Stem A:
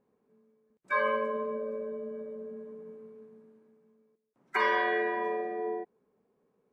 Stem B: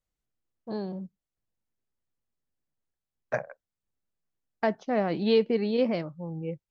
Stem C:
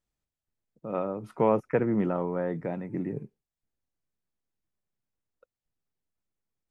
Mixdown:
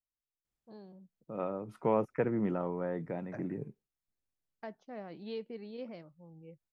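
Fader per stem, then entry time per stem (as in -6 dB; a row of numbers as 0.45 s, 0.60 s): mute, -18.0 dB, -5.5 dB; mute, 0.00 s, 0.45 s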